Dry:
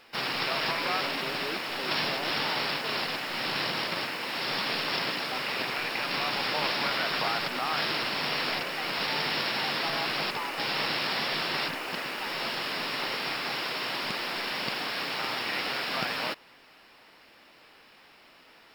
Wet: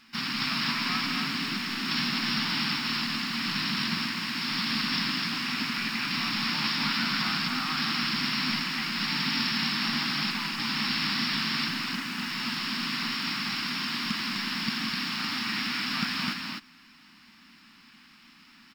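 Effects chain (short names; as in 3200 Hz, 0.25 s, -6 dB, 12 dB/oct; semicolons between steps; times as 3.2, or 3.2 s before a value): EQ curve 130 Hz 0 dB, 230 Hz +12 dB, 510 Hz -26 dB, 1100 Hz -2 dB, 3500 Hz -1 dB, 6200 Hz +4 dB, 10000 Hz -3 dB; loudspeakers at several distances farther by 58 m -10 dB, 87 m -4 dB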